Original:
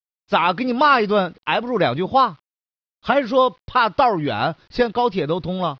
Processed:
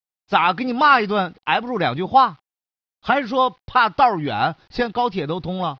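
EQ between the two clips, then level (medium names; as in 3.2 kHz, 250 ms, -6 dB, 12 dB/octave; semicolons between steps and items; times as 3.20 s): dynamic bell 610 Hz, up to -6 dB, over -27 dBFS, Q 1.3; peaking EQ 780 Hz +9 dB 0.24 oct; dynamic bell 1.6 kHz, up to +4 dB, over -23 dBFS, Q 0.96; -1.0 dB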